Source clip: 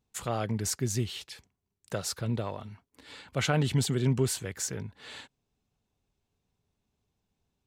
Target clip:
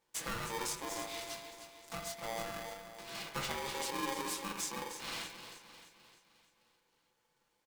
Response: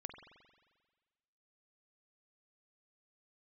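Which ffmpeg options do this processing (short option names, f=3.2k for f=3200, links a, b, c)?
-filter_complex "[0:a]highpass=110,equalizer=f=140:t=o:w=0.45:g=-13,aecho=1:1:6:0.86,acompressor=threshold=-40dB:ratio=6,asettb=1/sr,asplit=3[a][b][c];[a]atrim=end=0.734[d];[b]atrim=start=0.73:end=3.15,asetpts=PTS-STARTPTS,afade=t=in:d=0.004:c=qsin,afade=t=out:st=2.416:d=0.004:c=qsin,aeval=exprs='(tanh(89.1*val(0)+0.65)-tanh(0.65))/89.1':c=same[e];[c]atrim=start=3.146[f];[d][e]acrossfade=d=0.004:c1=hsin:c2=qsin[g];[g][f]acrossfade=d=0.004:c1=qsin:c2=hsin,flanger=delay=18:depth=5.1:speed=0.91,aecho=1:1:307|614|921|1228|1535|1842:0.316|0.161|0.0823|0.0419|0.0214|0.0109[h];[1:a]atrim=start_sample=2205,afade=t=out:st=0.19:d=0.01,atrim=end_sample=8820[i];[h][i]afir=irnorm=-1:irlink=0,aeval=exprs='val(0)*sgn(sin(2*PI*680*n/s))':c=same,volume=10.5dB"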